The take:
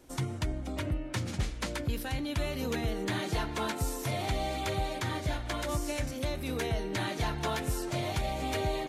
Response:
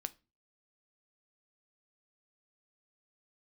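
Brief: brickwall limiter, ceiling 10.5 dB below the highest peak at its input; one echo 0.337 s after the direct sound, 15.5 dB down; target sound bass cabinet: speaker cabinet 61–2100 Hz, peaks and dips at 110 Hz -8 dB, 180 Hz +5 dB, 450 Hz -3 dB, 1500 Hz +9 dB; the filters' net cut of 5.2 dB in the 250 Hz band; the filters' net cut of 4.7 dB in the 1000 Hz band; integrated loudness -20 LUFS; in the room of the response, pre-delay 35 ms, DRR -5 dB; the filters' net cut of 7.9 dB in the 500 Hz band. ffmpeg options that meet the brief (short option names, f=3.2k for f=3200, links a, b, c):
-filter_complex "[0:a]equalizer=f=250:t=o:g=-6,equalizer=f=500:t=o:g=-6,equalizer=f=1k:t=o:g=-5.5,alimiter=level_in=8dB:limit=-24dB:level=0:latency=1,volume=-8dB,aecho=1:1:337:0.168,asplit=2[a][b];[1:a]atrim=start_sample=2205,adelay=35[c];[b][c]afir=irnorm=-1:irlink=0,volume=7dB[d];[a][d]amix=inputs=2:normalize=0,highpass=f=61:w=0.5412,highpass=f=61:w=1.3066,equalizer=f=110:t=q:w=4:g=-8,equalizer=f=180:t=q:w=4:g=5,equalizer=f=450:t=q:w=4:g=-3,equalizer=f=1.5k:t=q:w=4:g=9,lowpass=f=2.1k:w=0.5412,lowpass=f=2.1k:w=1.3066,volume=17dB"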